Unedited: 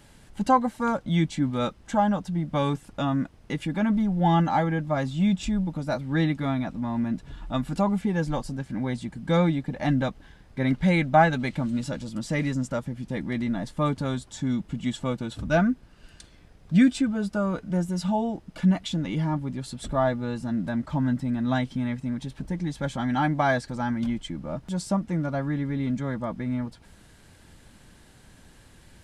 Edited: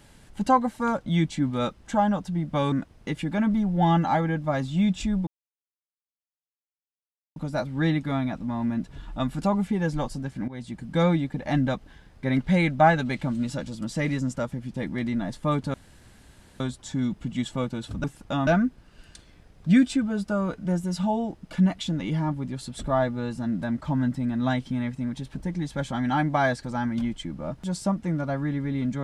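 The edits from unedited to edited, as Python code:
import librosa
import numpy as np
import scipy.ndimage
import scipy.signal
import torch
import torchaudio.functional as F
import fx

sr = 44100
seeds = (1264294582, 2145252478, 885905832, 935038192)

y = fx.edit(x, sr, fx.move(start_s=2.72, length_s=0.43, to_s=15.52),
    fx.insert_silence(at_s=5.7, length_s=2.09),
    fx.fade_in_from(start_s=8.82, length_s=0.32, floor_db=-16.0),
    fx.insert_room_tone(at_s=14.08, length_s=0.86), tone=tone)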